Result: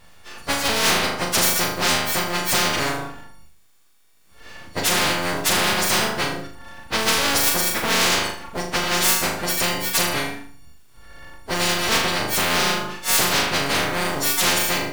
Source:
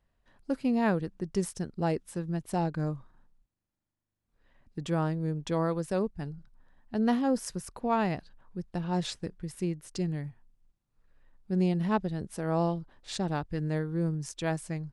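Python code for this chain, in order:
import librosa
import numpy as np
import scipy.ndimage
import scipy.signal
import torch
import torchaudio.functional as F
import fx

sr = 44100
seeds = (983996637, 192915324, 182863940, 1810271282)

p1 = fx.freq_snap(x, sr, grid_st=4)
p2 = fx.high_shelf(p1, sr, hz=7400.0, db=-9.5)
p3 = fx.quant_float(p2, sr, bits=2)
p4 = p2 + F.gain(torch.from_numpy(p3), -9.5).numpy()
p5 = np.abs(p4)
p6 = p5 + fx.room_flutter(p5, sr, wall_m=6.7, rt60_s=0.45, dry=0)
p7 = fx.spectral_comp(p6, sr, ratio=4.0)
y = F.gain(torch.from_numpy(p7), 4.0).numpy()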